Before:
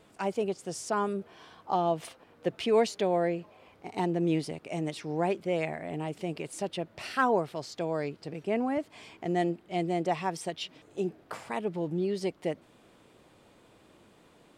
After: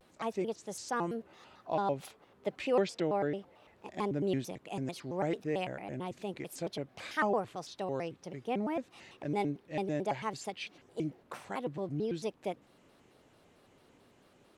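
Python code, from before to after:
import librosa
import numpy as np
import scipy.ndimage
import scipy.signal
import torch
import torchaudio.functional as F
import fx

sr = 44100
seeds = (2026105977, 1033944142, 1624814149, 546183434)

y = fx.lowpass(x, sr, hz=6700.0, slope=12, at=(2.75, 3.34))
y = fx.vibrato_shape(y, sr, shape='square', rate_hz=4.5, depth_cents=250.0)
y = y * librosa.db_to_amplitude(-4.5)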